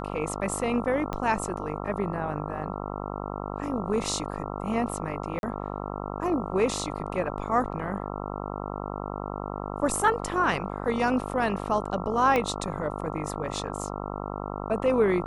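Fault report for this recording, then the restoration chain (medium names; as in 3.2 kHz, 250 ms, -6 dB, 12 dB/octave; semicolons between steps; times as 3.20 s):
buzz 50 Hz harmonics 27 -34 dBFS
1.13 s: pop -17 dBFS
5.39–5.43 s: dropout 41 ms
12.36 s: pop -12 dBFS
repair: de-click; de-hum 50 Hz, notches 27; interpolate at 5.39 s, 41 ms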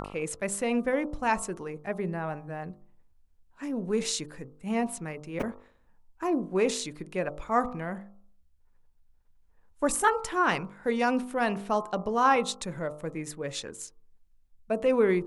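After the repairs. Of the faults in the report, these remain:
1.13 s: pop
12.36 s: pop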